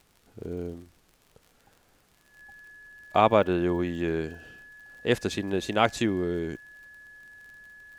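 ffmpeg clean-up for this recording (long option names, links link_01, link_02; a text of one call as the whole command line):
ffmpeg -i in.wav -af "adeclick=threshold=4,bandreject=frequency=1700:width=30,agate=range=-21dB:threshold=-55dB" out.wav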